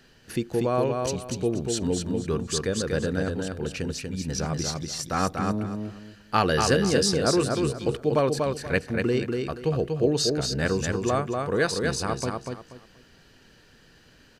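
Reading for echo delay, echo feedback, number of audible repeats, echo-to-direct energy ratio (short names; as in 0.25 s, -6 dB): 0.24 s, 25%, 3, -3.5 dB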